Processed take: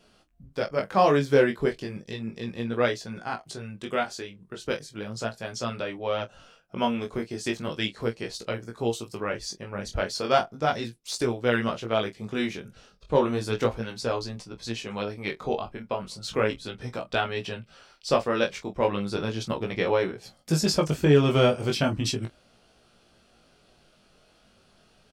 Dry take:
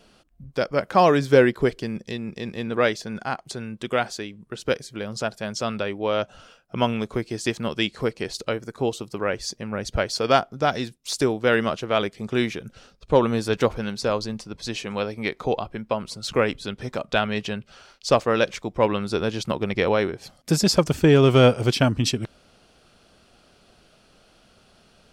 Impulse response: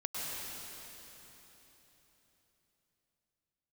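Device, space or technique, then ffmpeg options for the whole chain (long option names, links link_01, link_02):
double-tracked vocal: -filter_complex "[0:a]asettb=1/sr,asplit=3[link_01][link_02][link_03];[link_01]atrim=end=8.774[link_04];[link_02]atrim=start=8.77:end=9.18,asetpts=PTS-STARTPTS,afade=type=in:duration=0.004:curve=qsin,afade=type=out:start_time=0.406:duration=0.004:curve=qsin,highshelf=frequency=4200:gain=6[link_05];[link_03]atrim=start=9.176[link_06];[link_04][link_05]acrossfade=duration=0.004:curve1=hsin:curve2=qsin[link_07];[link_07][link_06]acrossfade=duration=0.004:curve1=qsin:curve2=hsin,asettb=1/sr,asplit=3[link_08][link_09][link_10];[link_08]atrim=end=16.834[link_11];[link_09]atrim=start=16.83:end=18.54,asetpts=PTS-STARTPTS,afade=type=in:duration=0.004:curve=qsin,afade=type=out:start_time=1.706:duration=0.004:curve=qsin,bandreject=frequency=6600:width=9.2[link_12];[link_10]atrim=start=18.536[link_13];[link_11][link_12]acrossfade=duration=0.004:curve1=hsin:curve2=qsin[link_14];[link_14][link_13]acrossfade=duration=0.004:curve1=qsin:curve2=hsin,asplit=2[link_15][link_16];[link_16]adelay=26,volume=-11dB[link_17];[link_15][link_17]amix=inputs=2:normalize=0,flanger=delay=16.5:depth=4.8:speed=0.35,volume=-1.5dB"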